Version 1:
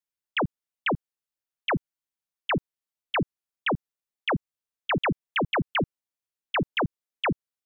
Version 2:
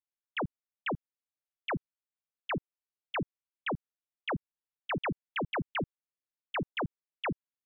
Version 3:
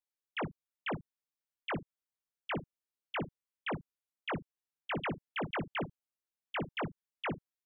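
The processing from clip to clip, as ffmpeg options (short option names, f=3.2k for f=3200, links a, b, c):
-af "lowpass=3.4k,volume=-7.5dB"
-af "aecho=1:1:19|58:0.473|0.168,volume=-3.5dB"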